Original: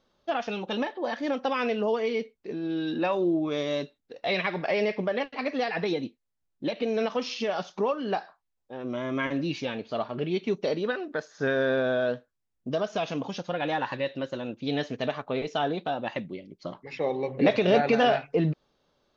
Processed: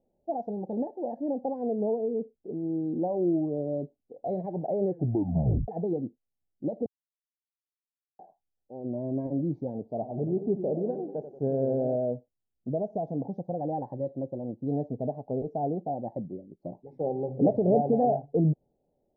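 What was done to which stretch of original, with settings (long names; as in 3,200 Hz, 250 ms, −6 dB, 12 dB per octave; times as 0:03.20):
0:04.78: tape stop 0.90 s
0:06.86–0:08.19: silence
0:09.89–0:11.96: feedback echo with a swinging delay time 93 ms, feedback 57%, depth 150 cents, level −11 dB
whole clip: elliptic low-pass filter 780 Hz, stop band 40 dB; dynamic equaliser 120 Hz, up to +7 dB, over −45 dBFS, Q 0.87; level −2 dB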